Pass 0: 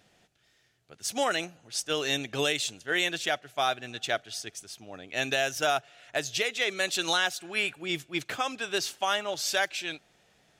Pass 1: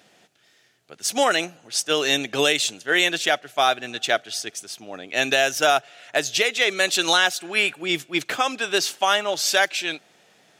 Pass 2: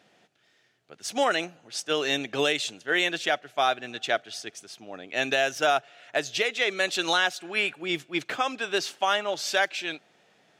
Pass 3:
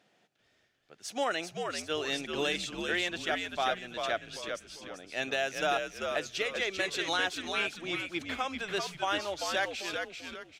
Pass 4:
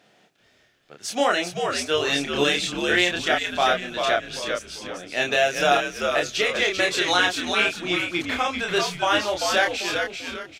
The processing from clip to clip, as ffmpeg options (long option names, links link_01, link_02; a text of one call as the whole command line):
ffmpeg -i in.wav -af "highpass=190,volume=8dB" out.wav
ffmpeg -i in.wav -af "highshelf=frequency=6300:gain=-11.5,volume=-4dB" out.wav
ffmpeg -i in.wav -filter_complex "[0:a]asplit=5[link_01][link_02][link_03][link_04][link_05];[link_02]adelay=391,afreqshift=-86,volume=-5dB[link_06];[link_03]adelay=782,afreqshift=-172,volume=-14.4dB[link_07];[link_04]adelay=1173,afreqshift=-258,volume=-23.7dB[link_08];[link_05]adelay=1564,afreqshift=-344,volume=-33.1dB[link_09];[link_01][link_06][link_07][link_08][link_09]amix=inputs=5:normalize=0,volume=-7dB" out.wav
ffmpeg -i in.wav -filter_complex "[0:a]asplit=2[link_01][link_02];[link_02]adelay=28,volume=-3dB[link_03];[link_01][link_03]amix=inputs=2:normalize=0,volume=8.5dB" out.wav